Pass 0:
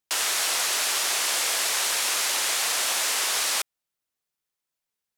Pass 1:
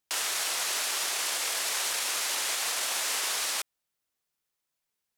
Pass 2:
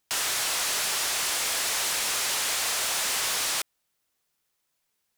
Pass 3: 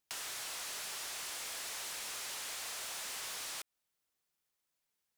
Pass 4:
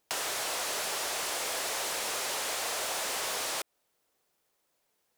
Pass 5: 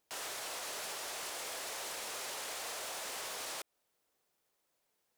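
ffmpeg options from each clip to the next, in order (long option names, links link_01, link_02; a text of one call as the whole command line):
ffmpeg -i in.wav -af "alimiter=limit=-22.5dB:level=0:latency=1:release=43,volume=1.5dB" out.wav
ffmpeg -i in.wav -af "aeval=exprs='0.0944*(cos(1*acos(clip(val(0)/0.0944,-1,1)))-cos(1*PI/2))+0.0237*(cos(5*acos(clip(val(0)/0.0944,-1,1)))-cos(5*PI/2))':channel_layout=same" out.wav
ffmpeg -i in.wav -af "acompressor=threshold=-33dB:ratio=6,volume=-8.5dB" out.wav
ffmpeg -i in.wav -af "equalizer=frequency=520:width=0.67:gain=10,volume=7.5dB" out.wav
ffmpeg -i in.wav -af "alimiter=level_in=7.5dB:limit=-24dB:level=0:latency=1:release=34,volume=-7.5dB,volume=-4dB" out.wav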